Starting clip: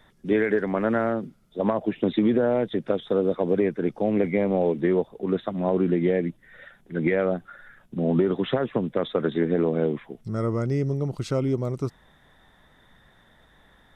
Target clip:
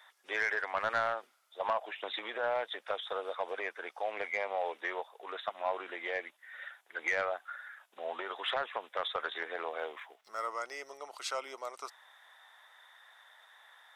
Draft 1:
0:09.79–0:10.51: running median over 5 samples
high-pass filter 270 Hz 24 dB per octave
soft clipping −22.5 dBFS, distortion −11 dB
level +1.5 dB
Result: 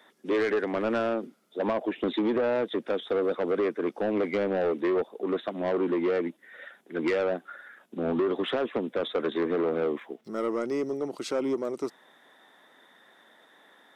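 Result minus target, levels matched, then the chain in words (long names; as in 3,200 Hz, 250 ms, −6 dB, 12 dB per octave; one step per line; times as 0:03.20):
250 Hz band +18.0 dB
0:09.79–0:10.51: running median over 5 samples
high-pass filter 780 Hz 24 dB per octave
soft clipping −22.5 dBFS, distortion −17 dB
level +1.5 dB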